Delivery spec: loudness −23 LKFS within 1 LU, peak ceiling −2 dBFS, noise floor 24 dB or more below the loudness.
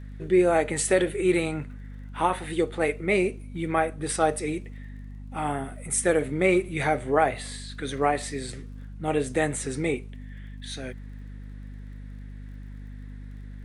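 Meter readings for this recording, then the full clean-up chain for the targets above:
crackle rate 36 per second; mains hum 50 Hz; hum harmonics up to 250 Hz; level of the hum −37 dBFS; integrated loudness −26.0 LKFS; sample peak −8.0 dBFS; target loudness −23.0 LKFS
→ click removal
mains-hum notches 50/100/150/200/250 Hz
level +3 dB

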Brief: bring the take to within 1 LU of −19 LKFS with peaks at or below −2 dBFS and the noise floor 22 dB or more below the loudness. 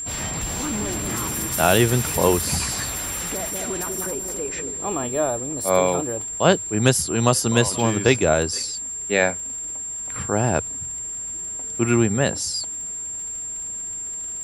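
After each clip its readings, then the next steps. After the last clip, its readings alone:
crackle rate 37 per second; interfering tone 7,400 Hz; level of the tone −28 dBFS; integrated loudness −22.0 LKFS; sample peak −2.0 dBFS; target loudness −19.0 LKFS
→ click removal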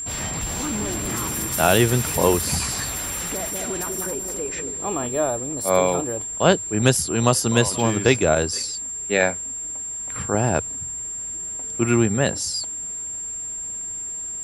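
crackle rate 0.21 per second; interfering tone 7,400 Hz; level of the tone −28 dBFS
→ notch filter 7,400 Hz, Q 30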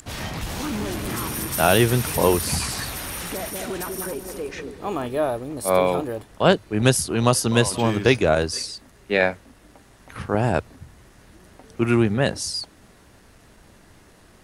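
interfering tone none found; integrated loudness −22.5 LKFS; sample peak −2.5 dBFS; target loudness −19.0 LKFS
→ level +3.5 dB
brickwall limiter −2 dBFS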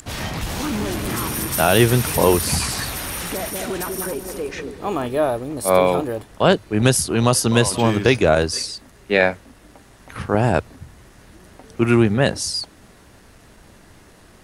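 integrated loudness −19.5 LKFS; sample peak −2.0 dBFS; background noise floor −49 dBFS

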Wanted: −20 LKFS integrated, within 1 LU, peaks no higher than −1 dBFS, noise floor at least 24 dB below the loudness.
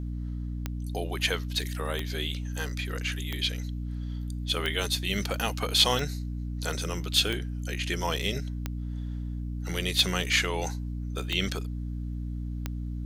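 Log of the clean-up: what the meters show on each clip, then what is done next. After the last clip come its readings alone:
number of clicks 10; mains hum 60 Hz; hum harmonics up to 300 Hz; level of the hum −31 dBFS; integrated loudness −29.5 LKFS; sample peak −8.0 dBFS; target loudness −20.0 LKFS
→ click removal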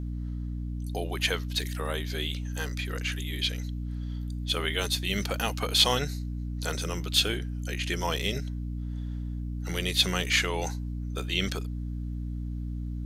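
number of clicks 0; mains hum 60 Hz; hum harmonics up to 300 Hz; level of the hum −31 dBFS
→ hum removal 60 Hz, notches 5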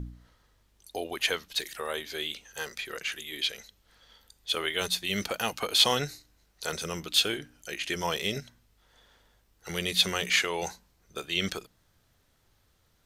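mains hum none found; integrated loudness −29.5 LKFS; sample peak −8.0 dBFS; target loudness −20.0 LKFS
→ level +9.5 dB
brickwall limiter −1 dBFS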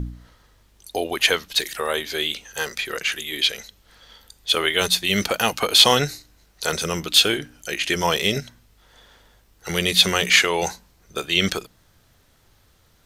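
integrated loudness −20.0 LKFS; sample peak −1.0 dBFS; background noise floor −59 dBFS

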